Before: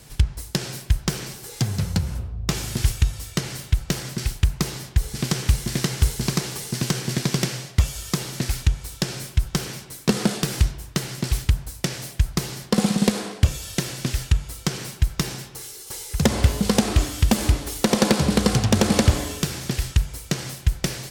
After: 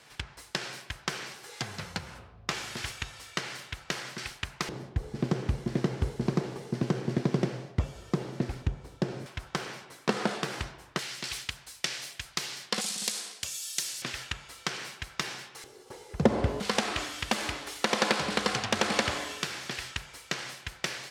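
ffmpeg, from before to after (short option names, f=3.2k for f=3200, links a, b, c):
-af "asetnsamples=n=441:p=0,asendcmd='4.69 bandpass f 390;9.26 bandpass f 1100;10.99 bandpass f 2900;12.81 bandpass f 7300;14.02 bandpass f 1800;15.64 bandpass f 490;16.6 bandpass f 1800',bandpass=f=1.6k:t=q:w=0.68:csg=0"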